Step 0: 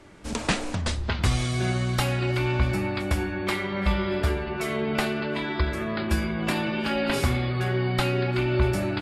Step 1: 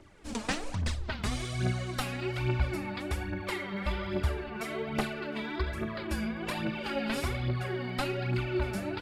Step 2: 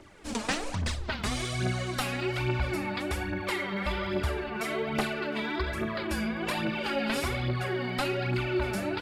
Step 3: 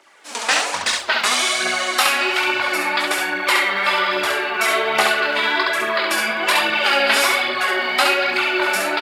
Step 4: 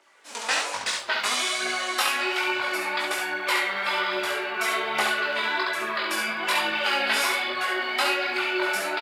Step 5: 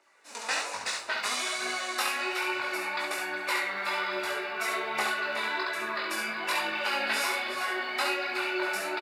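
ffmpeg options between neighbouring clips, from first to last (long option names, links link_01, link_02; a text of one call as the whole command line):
ffmpeg -i in.wav -af "aphaser=in_gain=1:out_gain=1:delay=4.9:decay=0.6:speed=1.2:type=triangular,volume=-9dB" out.wav
ffmpeg -i in.wav -filter_complex "[0:a]lowshelf=frequency=190:gain=-6,asplit=2[link_01][link_02];[link_02]alimiter=level_in=5dB:limit=-24dB:level=0:latency=1:release=24,volume=-5dB,volume=-1dB[link_03];[link_01][link_03]amix=inputs=2:normalize=0" out.wav
ffmpeg -i in.wav -filter_complex "[0:a]dynaudnorm=framelen=290:gausssize=3:maxgain=11dB,highpass=750,asplit=2[link_01][link_02];[link_02]aecho=0:1:21|68:0.473|0.668[link_03];[link_01][link_03]amix=inputs=2:normalize=0,volume=4dB" out.wav
ffmpeg -i in.wav -filter_complex "[0:a]highpass=71,asplit=2[link_01][link_02];[link_02]adelay=19,volume=-5dB[link_03];[link_01][link_03]amix=inputs=2:normalize=0,volume=-8.5dB" out.wav
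ffmpeg -i in.wav -af "bandreject=frequency=3200:width=7,aecho=1:1:367:0.282,volume=-5dB" out.wav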